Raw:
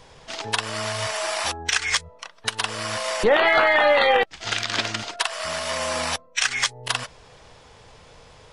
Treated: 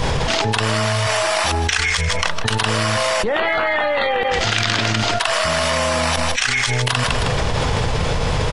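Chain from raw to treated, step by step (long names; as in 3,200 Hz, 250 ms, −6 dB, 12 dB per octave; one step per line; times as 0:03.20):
bass and treble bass +7 dB, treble −3 dB
repeating echo 157 ms, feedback 28%, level −18 dB
envelope flattener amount 100%
level −5.5 dB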